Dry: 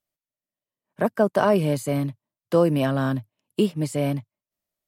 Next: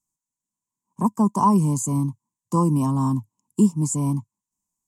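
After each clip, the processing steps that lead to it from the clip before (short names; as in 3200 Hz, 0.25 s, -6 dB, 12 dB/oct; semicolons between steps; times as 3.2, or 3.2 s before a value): EQ curve 120 Hz 0 dB, 210 Hz +5 dB, 360 Hz -5 dB, 610 Hz -21 dB, 1000 Hz +10 dB, 1500 Hz -29 dB, 2400 Hz -19 dB, 3900 Hz -18 dB, 7000 Hz +13 dB, 14000 Hz -6 dB; gain +2 dB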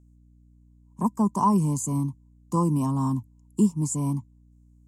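hum 60 Hz, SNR 29 dB; gain -3.5 dB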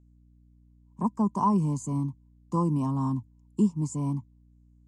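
air absorption 87 m; gain -2.5 dB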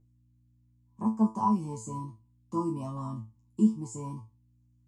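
resonator 110 Hz, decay 0.26 s, harmonics all, mix 100%; gain +6.5 dB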